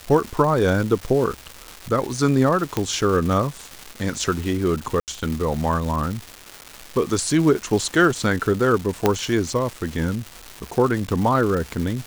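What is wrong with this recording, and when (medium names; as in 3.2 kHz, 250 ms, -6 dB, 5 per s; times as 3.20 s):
crackle 550 per s -27 dBFS
2.77 s: pop -7 dBFS
5.00–5.08 s: dropout 78 ms
9.06 s: pop -3 dBFS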